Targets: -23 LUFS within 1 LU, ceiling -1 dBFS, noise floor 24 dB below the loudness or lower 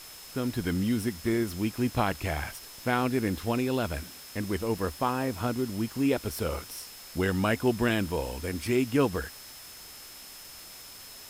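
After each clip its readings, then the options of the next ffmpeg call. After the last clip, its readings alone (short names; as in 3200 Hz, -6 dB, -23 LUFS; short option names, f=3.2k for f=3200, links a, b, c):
steady tone 5200 Hz; tone level -50 dBFS; noise floor -47 dBFS; noise floor target -54 dBFS; loudness -29.5 LUFS; peak -12.5 dBFS; loudness target -23.0 LUFS
-> -af "bandreject=f=5.2k:w=30"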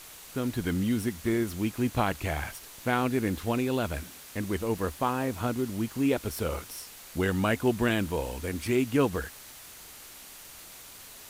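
steady tone none; noise floor -48 dBFS; noise floor target -54 dBFS
-> -af "afftdn=nr=6:nf=-48"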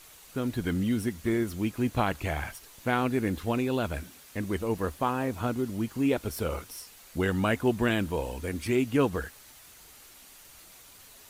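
noise floor -52 dBFS; noise floor target -54 dBFS
-> -af "afftdn=nr=6:nf=-52"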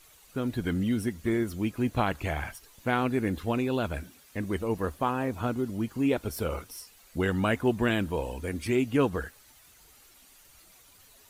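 noise floor -57 dBFS; loudness -30.0 LUFS; peak -12.5 dBFS; loudness target -23.0 LUFS
-> -af "volume=7dB"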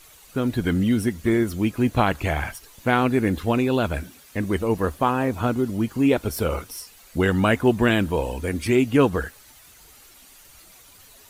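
loudness -23.0 LUFS; peak -5.5 dBFS; noise floor -50 dBFS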